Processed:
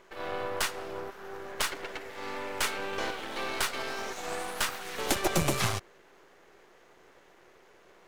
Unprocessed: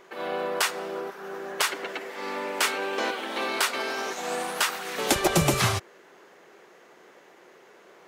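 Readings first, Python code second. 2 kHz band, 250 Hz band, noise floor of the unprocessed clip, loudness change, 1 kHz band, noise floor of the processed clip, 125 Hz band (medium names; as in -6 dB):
-5.5 dB, -5.5 dB, -54 dBFS, -5.5 dB, -5.5 dB, -59 dBFS, -6.0 dB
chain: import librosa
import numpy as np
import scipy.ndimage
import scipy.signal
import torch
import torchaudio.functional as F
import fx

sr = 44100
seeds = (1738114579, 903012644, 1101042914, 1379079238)

y = np.where(x < 0.0, 10.0 ** (-12.0 / 20.0) * x, x)
y = y * librosa.db_to_amplitude(-2.0)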